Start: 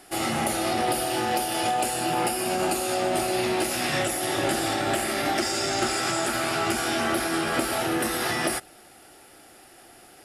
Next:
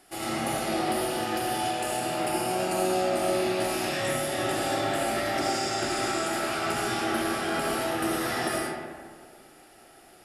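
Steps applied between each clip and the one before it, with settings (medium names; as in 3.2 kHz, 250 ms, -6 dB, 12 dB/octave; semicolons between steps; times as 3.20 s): reverberation RT60 1.8 s, pre-delay 35 ms, DRR -3.5 dB; trim -7.5 dB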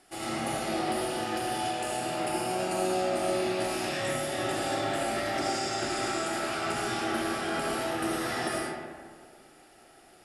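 low-pass 11 kHz 24 dB/octave; trim -2.5 dB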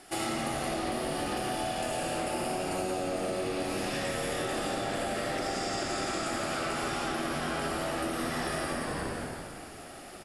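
on a send: frequency-shifting echo 171 ms, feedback 50%, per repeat -86 Hz, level -3.5 dB; on the sum: compression 12:1, threshold -37 dBFS, peak gain reduction 15 dB; trim +8 dB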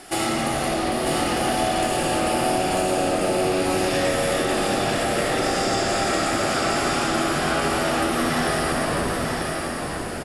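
in parallel at -11 dB: saturation -33.5 dBFS, distortion -10 dB; on the sum: delay 945 ms -4 dB; trim +7.5 dB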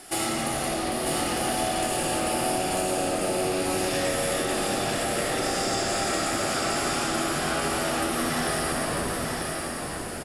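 treble shelf 6.7 kHz +8.5 dB; trim -5 dB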